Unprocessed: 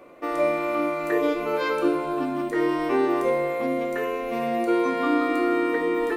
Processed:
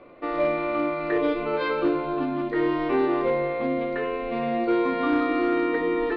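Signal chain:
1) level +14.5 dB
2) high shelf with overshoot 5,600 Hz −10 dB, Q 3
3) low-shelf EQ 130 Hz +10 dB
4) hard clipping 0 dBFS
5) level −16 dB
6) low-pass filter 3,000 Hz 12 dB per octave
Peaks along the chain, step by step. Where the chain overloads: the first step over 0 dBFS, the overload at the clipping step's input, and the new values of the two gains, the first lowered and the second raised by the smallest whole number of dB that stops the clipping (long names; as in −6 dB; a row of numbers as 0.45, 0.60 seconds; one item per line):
+3.5, +4.0, +5.0, 0.0, −16.0, −15.5 dBFS
step 1, 5.0 dB
step 1 +9.5 dB, step 5 −11 dB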